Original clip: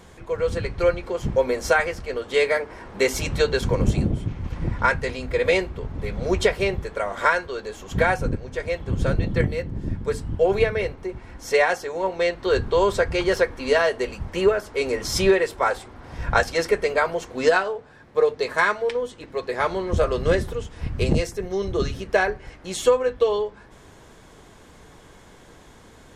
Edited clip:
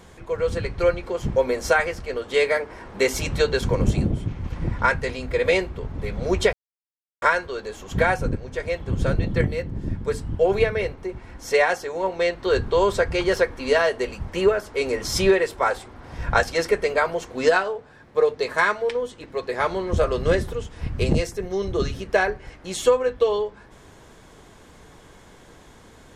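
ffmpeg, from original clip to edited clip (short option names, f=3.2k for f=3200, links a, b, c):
-filter_complex "[0:a]asplit=3[a][b][c];[a]atrim=end=6.53,asetpts=PTS-STARTPTS,afade=t=out:st=6.526:d=0.004:c=hsin[d];[b]atrim=start=6.53:end=7.22,asetpts=PTS-STARTPTS,volume=0[e];[c]atrim=start=7.22,asetpts=PTS-STARTPTS,afade=t=in:d=0.004:c=hsin[f];[d][e][f]concat=n=3:v=0:a=1"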